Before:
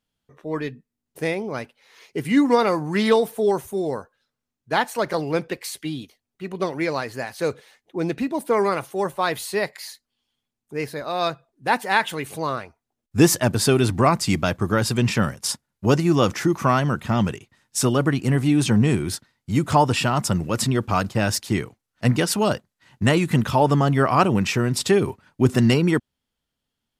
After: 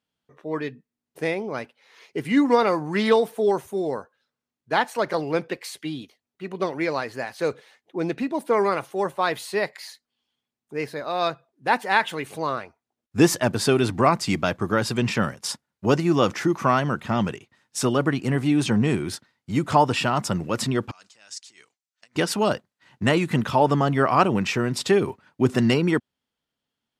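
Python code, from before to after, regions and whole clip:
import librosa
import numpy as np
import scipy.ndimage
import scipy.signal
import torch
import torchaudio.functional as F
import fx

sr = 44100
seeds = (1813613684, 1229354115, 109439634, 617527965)

y = fx.chain(x, sr, fx.over_compress(threshold_db=-26.0, ratio=-1.0),
    fx.bandpass_q(hz=7700.0, q=1.8),
    fx.air_absorb(metres=65.0), at=(20.91, 22.16))
y = fx.highpass(y, sr, hz=190.0, slope=6)
y = fx.high_shelf(y, sr, hz=7400.0, db=-10.0)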